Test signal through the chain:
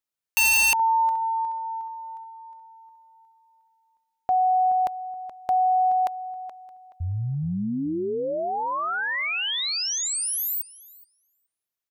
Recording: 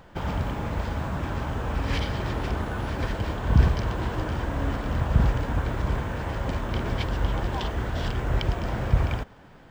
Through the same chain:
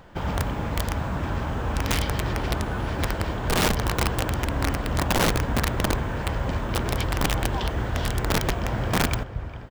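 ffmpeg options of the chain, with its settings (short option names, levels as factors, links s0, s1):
-filter_complex "[0:a]asplit=2[s0][s1];[s1]adelay=425,lowpass=f=3800:p=1,volume=0.251,asplit=2[s2][s3];[s3]adelay=425,lowpass=f=3800:p=1,volume=0.23,asplit=2[s4][s5];[s5]adelay=425,lowpass=f=3800:p=1,volume=0.23[s6];[s0][s2][s4][s6]amix=inputs=4:normalize=0,aeval=exprs='(mod(7.5*val(0)+1,2)-1)/7.5':c=same,volume=1.19"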